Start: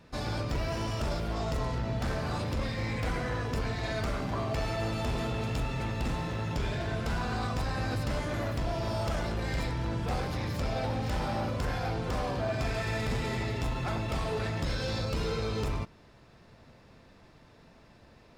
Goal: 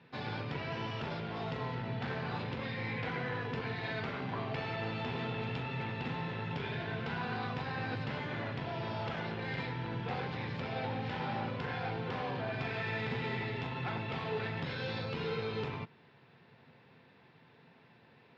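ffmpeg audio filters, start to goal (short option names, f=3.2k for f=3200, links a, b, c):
-af "highpass=f=130:w=0.5412,highpass=f=130:w=1.3066,equalizer=f=200:t=q:w=4:g=-6,equalizer=f=310:t=q:w=4:g=-8,equalizer=f=610:t=q:w=4:g=-10,equalizer=f=1.2k:t=q:w=4:g=-6,lowpass=f=3.6k:w=0.5412,lowpass=f=3.6k:w=1.3066"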